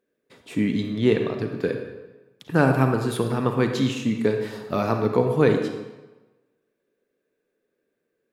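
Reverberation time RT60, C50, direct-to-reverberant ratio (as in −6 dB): 1.2 s, 5.5 dB, 5.0 dB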